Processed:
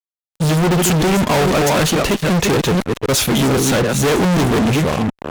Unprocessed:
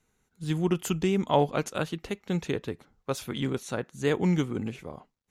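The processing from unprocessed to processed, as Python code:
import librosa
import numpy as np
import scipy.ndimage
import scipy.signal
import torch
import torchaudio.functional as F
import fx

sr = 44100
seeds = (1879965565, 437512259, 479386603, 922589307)

y = fx.reverse_delay(x, sr, ms=255, wet_db=-10.0)
y = fx.fuzz(y, sr, gain_db=45.0, gate_db=-51.0)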